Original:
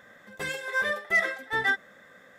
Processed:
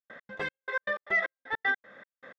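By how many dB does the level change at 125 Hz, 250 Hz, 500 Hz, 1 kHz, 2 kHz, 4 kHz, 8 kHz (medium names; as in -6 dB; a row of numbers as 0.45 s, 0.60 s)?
no reading, -4.5 dB, -3.0 dB, -3.0 dB, -4.0 dB, -7.5 dB, under -15 dB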